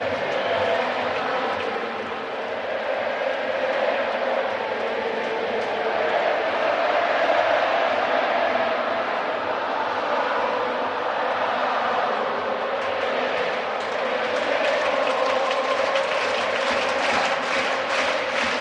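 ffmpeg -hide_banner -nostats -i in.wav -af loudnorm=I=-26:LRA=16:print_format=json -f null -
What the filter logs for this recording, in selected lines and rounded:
"input_i" : "-22.8",
"input_tp" : "-8.8",
"input_lra" : "3.0",
"input_thresh" : "-32.8",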